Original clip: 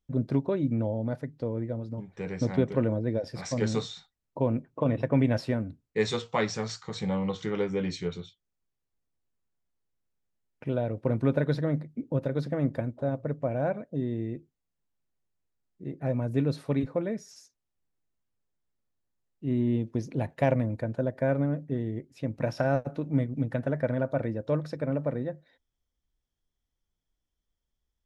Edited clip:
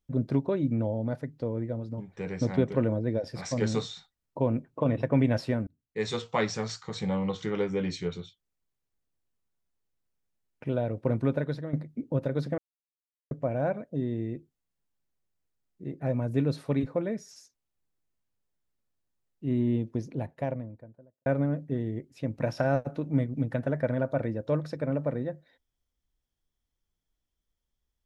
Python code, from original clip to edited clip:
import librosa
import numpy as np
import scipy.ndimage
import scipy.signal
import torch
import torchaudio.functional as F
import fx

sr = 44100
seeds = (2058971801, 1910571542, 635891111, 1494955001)

y = fx.studio_fade_out(x, sr, start_s=19.56, length_s=1.7)
y = fx.edit(y, sr, fx.fade_in_span(start_s=5.67, length_s=0.57),
    fx.fade_out_to(start_s=11.13, length_s=0.6, floor_db=-10.5),
    fx.silence(start_s=12.58, length_s=0.73), tone=tone)